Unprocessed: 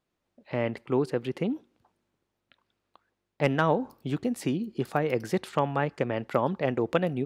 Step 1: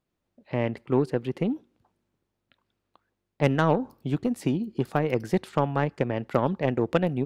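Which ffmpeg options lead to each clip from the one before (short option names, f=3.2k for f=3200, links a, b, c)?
-af "lowshelf=f=320:g=6.5,aeval=exprs='0.447*(cos(1*acos(clip(val(0)/0.447,-1,1)))-cos(1*PI/2))+0.0178*(cos(7*acos(clip(val(0)/0.447,-1,1)))-cos(7*PI/2))':c=same"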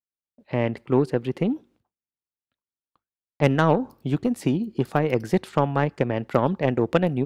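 -af "agate=range=-33dB:threshold=-53dB:ratio=3:detection=peak,volume=3dB"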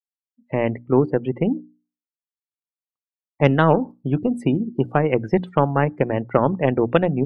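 -af "afftdn=nr=36:nf=-37,bandreject=f=60:t=h:w=6,bandreject=f=120:t=h:w=6,bandreject=f=180:t=h:w=6,bandreject=f=240:t=h:w=6,bandreject=f=300:t=h:w=6,volume=3.5dB"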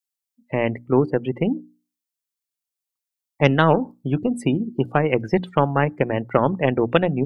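-af "highshelf=f=3k:g=11.5,volume=-1dB"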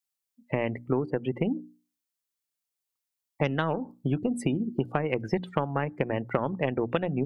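-af "acompressor=threshold=-23dB:ratio=6"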